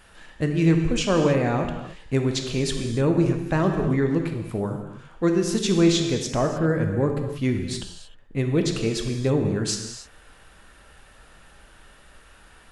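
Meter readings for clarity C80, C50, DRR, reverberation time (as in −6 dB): 7.0 dB, 5.5 dB, 4.0 dB, non-exponential decay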